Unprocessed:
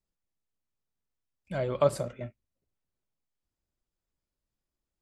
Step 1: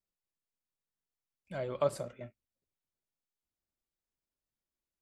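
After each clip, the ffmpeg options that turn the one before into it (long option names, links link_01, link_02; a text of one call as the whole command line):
ffmpeg -i in.wav -af "lowshelf=frequency=140:gain=-6.5,volume=-5.5dB" out.wav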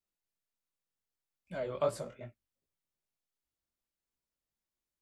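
ffmpeg -i in.wav -af "flanger=delay=17:depth=5.4:speed=2.6,volume=2.5dB" out.wav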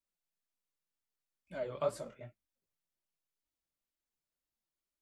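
ffmpeg -i in.wav -af "flanger=delay=3.1:depth=3.8:regen=40:speed=2:shape=sinusoidal,volume=1dB" out.wav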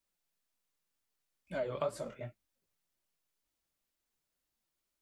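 ffmpeg -i in.wav -af "acompressor=threshold=-38dB:ratio=4,volume=6dB" out.wav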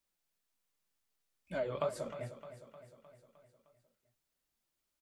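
ffmpeg -i in.wav -af "aecho=1:1:307|614|921|1228|1535|1842:0.237|0.138|0.0798|0.0463|0.0268|0.0156" out.wav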